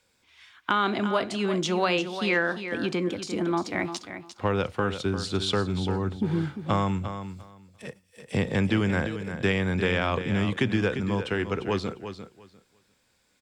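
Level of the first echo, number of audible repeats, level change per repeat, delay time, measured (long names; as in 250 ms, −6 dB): −10.0 dB, 2, −15.0 dB, 349 ms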